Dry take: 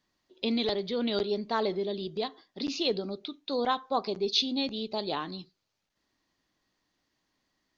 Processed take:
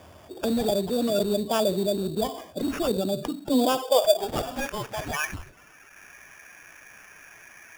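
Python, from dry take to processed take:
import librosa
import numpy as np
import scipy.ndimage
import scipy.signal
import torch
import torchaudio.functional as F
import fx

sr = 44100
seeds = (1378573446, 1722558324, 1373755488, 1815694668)

y = fx.spec_quant(x, sr, step_db=30)
y = fx.high_shelf(y, sr, hz=4700.0, db=-10.0)
y = fx.filter_sweep_highpass(y, sr, from_hz=80.0, to_hz=1700.0, start_s=2.87, end_s=4.68, q=7.8)
y = fx.graphic_eq_31(y, sr, hz=(630, 2000, 5000), db=(11, -10, -12))
y = fx.sample_hold(y, sr, seeds[0], rate_hz=4100.0, jitter_pct=0)
y = fx.env_flatten(y, sr, amount_pct=50)
y = y * 10.0 ** (-6.0 / 20.0)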